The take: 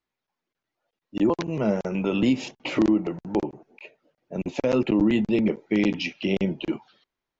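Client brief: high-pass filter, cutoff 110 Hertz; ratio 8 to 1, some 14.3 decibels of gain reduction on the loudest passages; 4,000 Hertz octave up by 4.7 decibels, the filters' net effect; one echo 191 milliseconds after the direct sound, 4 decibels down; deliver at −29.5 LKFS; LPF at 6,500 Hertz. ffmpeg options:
ffmpeg -i in.wav -af "highpass=110,lowpass=6500,equalizer=frequency=4000:width_type=o:gain=7.5,acompressor=threshold=-32dB:ratio=8,aecho=1:1:191:0.631,volume=6dB" out.wav

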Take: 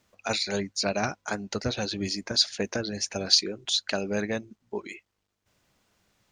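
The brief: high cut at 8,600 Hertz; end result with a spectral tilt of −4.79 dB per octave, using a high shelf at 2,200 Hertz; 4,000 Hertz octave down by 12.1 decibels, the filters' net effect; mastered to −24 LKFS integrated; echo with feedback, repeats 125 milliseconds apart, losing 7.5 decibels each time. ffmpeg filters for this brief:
ffmpeg -i in.wav -af "lowpass=8600,highshelf=frequency=2200:gain=-8.5,equalizer=frequency=4000:width_type=o:gain=-6,aecho=1:1:125|250|375|500|625:0.422|0.177|0.0744|0.0312|0.0131,volume=8dB" out.wav

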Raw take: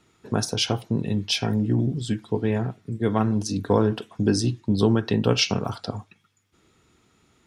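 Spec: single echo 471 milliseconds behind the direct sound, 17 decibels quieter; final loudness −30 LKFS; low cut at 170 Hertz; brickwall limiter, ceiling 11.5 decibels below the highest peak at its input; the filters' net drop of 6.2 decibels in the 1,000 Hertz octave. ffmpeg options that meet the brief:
ffmpeg -i in.wav -af "highpass=170,equalizer=frequency=1000:width_type=o:gain=-8.5,alimiter=limit=-20dB:level=0:latency=1,aecho=1:1:471:0.141,volume=0.5dB" out.wav

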